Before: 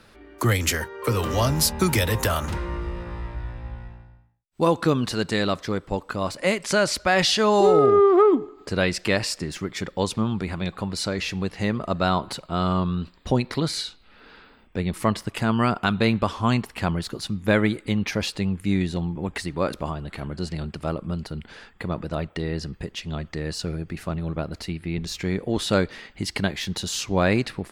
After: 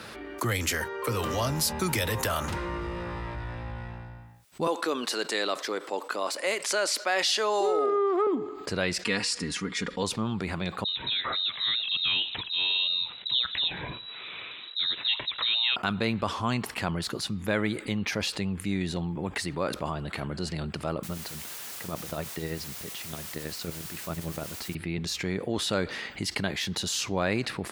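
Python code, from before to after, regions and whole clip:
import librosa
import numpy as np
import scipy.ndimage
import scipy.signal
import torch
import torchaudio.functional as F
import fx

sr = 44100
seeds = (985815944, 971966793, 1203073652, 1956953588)

y = fx.chain(x, sr, fx.highpass(hz=310.0, slope=24),
    fx.high_shelf(hz=5200.0, db=4.0), at=(4.67, 8.27))
y = fx.chain(y, sr, fx.steep_lowpass(hz=11000.0, slope=96),
    fx.peak_eq(hz=650.0, db=-10.5, octaves=0.45),
    fx.comb(ms=4.2, depth=0.69), at=(9.02, 10.03))
y = fx.chain(y, sr, fx.dispersion(late='highs', ms=42.0, hz=330.0),
    fx.freq_invert(carrier_hz=3900), at=(10.84, 15.76))
y = fx.chain(y, sr, fx.level_steps(step_db=14),
    fx.tremolo(hz=12.0, depth=0.61),
    fx.quant_dither(seeds[0], bits=8, dither='triangular'), at=(21.03, 24.75))
y = scipy.signal.sosfilt(scipy.signal.butter(2, 92.0, 'highpass', fs=sr, output='sos'), y)
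y = fx.peak_eq(y, sr, hz=180.0, db=-3.5, octaves=2.8)
y = fx.env_flatten(y, sr, amount_pct=50)
y = y * librosa.db_to_amplitude(-8.0)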